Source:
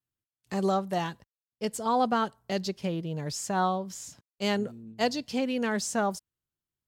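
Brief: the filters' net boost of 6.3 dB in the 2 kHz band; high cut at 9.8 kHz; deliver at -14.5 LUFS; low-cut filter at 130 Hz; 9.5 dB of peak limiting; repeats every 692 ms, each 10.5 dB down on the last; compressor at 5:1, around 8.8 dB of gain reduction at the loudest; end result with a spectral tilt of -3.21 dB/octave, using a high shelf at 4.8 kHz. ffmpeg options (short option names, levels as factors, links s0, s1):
-af "highpass=130,lowpass=9800,equalizer=f=2000:t=o:g=7,highshelf=f=4800:g=7,acompressor=threshold=0.0355:ratio=5,alimiter=limit=0.0708:level=0:latency=1,aecho=1:1:692|1384|2076:0.299|0.0896|0.0269,volume=10.6"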